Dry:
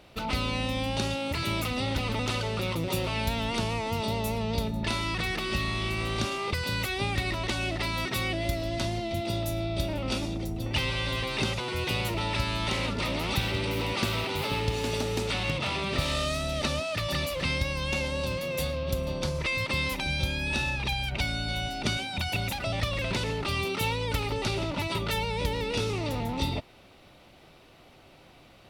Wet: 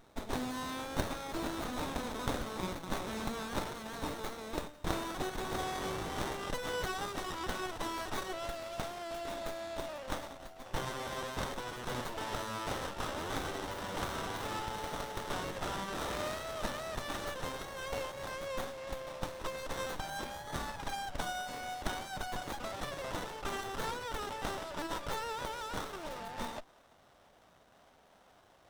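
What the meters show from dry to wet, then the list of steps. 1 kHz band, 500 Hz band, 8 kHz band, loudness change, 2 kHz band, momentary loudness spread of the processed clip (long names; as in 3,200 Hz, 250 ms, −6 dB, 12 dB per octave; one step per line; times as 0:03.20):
−4.0 dB, −7.5 dB, −5.5 dB, −9.5 dB, −10.0 dB, 4 LU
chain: guitar amp tone stack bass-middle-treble 10-0-10
high-pass filter sweep 4,000 Hz → 590 Hz, 0:05.33–0:08.36
windowed peak hold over 17 samples
level +1.5 dB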